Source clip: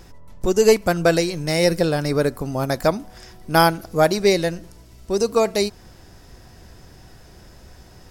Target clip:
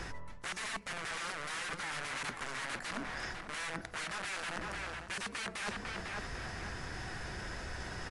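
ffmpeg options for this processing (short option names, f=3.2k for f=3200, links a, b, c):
-filter_complex "[0:a]acrossover=split=350|880[a][b][c];[a]acompressor=threshold=-29dB:ratio=4[d];[b]acompressor=threshold=-26dB:ratio=4[e];[c]acompressor=threshold=-35dB:ratio=4[f];[d][e][f]amix=inputs=3:normalize=0,aeval=exprs='(mod(23.7*val(0)+1,2)-1)/23.7':c=same,equalizer=f=1.7k:w=0.78:g=12,asplit=2[g][h];[h]adelay=501,lowpass=f=2.3k:p=1,volume=-9.5dB,asplit=2[i][j];[j]adelay=501,lowpass=f=2.3k:p=1,volume=0.37,asplit=2[k][l];[l]adelay=501,lowpass=f=2.3k:p=1,volume=0.37,asplit=2[m][n];[n]adelay=501,lowpass=f=2.3k:p=1,volume=0.37[o];[g][i][k][m][o]amix=inputs=5:normalize=0,areverse,acompressor=threshold=-39dB:ratio=10,areverse,volume=2.5dB" -ar 24000 -c:a libmp3lame -b:a 56k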